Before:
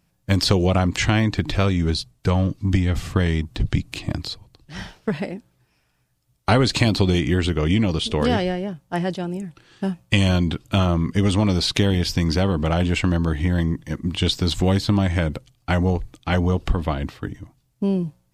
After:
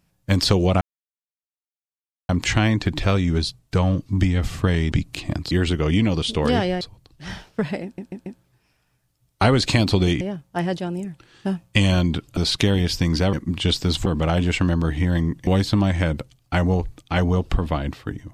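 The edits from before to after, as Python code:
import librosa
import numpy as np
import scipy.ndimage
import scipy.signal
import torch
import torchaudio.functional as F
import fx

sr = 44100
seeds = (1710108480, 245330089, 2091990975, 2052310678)

y = fx.edit(x, sr, fx.insert_silence(at_s=0.81, length_s=1.48),
    fx.cut(start_s=3.44, length_s=0.27),
    fx.stutter(start_s=5.33, slice_s=0.14, count=4),
    fx.move(start_s=7.28, length_s=1.3, to_s=4.3),
    fx.cut(start_s=10.74, length_s=0.79),
    fx.move(start_s=13.9, length_s=0.73, to_s=12.49), tone=tone)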